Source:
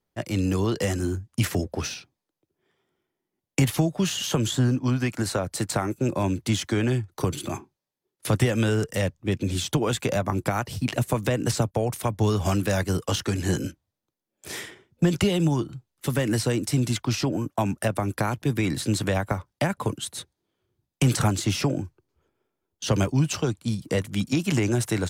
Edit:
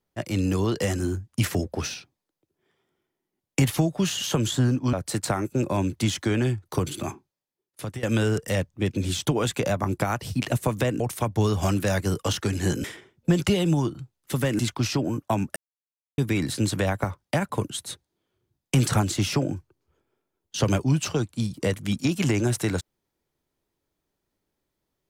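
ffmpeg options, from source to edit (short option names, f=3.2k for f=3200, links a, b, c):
-filter_complex "[0:a]asplit=8[a][b][c][d][e][f][g][h];[a]atrim=end=4.932[i];[b]atrim=start=5.388:end=8.49,asetpts=PTS-STARTPTS,afade=t=out:st=2.142:d=0.96:silence=0.149624[j];[c]atrim=start=8.49:end=11.462,asetpts=PTS-STARTPTS,afade=t=in:d=0.004:c=hsin:silence=0.149624[k];[d]atrim=start=11.828:end=13.672[l];[e]atrim=start=14.578:end=16.332[m];[f]atrim=start=16.868:end=17.84,asetpts=PTS-STARTPTS,afade=t=out:st=0.968:d=0.004:c=hsin[n];[g]atrim=start=17.84:end=18.46,asetpts=PTS-STARTPTS,volume=0[o];[h]atrim=start=18.46,asetpts=PTS-STARTPTS,afade=t=in:d=0.004:c=hsin[p];[j][k]concat=n=2:v=0:a=1[q];[i][q]acrossfade=d=0.004:c1=hsin:c2=hsin[r];[r][l]acrossfade=d=0.004:c1=hsin:c2=hsin[s];[s][m]acrossfade=d=0.004:c1=hsin:c2=hsin[t];[n][o][p]concat=n=3:v=0:a=1[u];[t][u]acrossfade=d=0.004:c1=hsin:c2=hsin"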